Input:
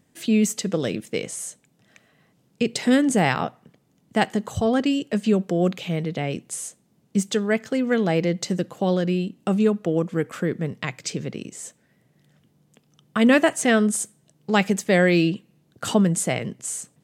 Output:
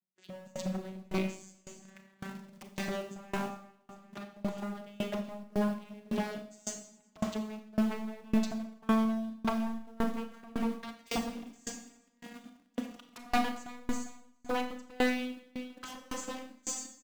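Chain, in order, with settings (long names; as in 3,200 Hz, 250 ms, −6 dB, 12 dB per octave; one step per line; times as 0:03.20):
vocoder with a gliding carrier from F#3, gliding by +6 semitones
camcorder AGC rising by 20 dB per second
noise gate with hold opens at −43 dBFS
high-pass filter 280 Hz 6 dB per octave
parametric band 420 Hz −7.5 dB 0.54 octaves
in parallel at −8 dB: bit-depth reduction 6 bits, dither none
on the sum: wave folding −19.5 dBFS
on a send: repeating echo 400 ms, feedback 35%, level −18 dB
on the sum: four-comb reverb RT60 1.1 s, combs from 28 ms, DRR 2.5 dB
tremolo with a ramp in dB decaying 1.8 Hz, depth 28 dB
level −2.5 dB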